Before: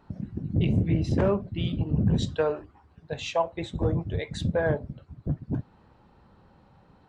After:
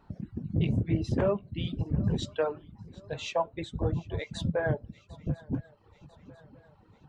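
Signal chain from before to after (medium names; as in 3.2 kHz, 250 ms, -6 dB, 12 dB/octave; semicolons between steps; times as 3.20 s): flange 0.51 Hz, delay 0.7 ms, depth 8.9 ms, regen +74%; shuffle delay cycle 996 ms, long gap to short 3:1, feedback 48%, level -21.5 dB; reverb removal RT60 0.73 s; trim +2 dB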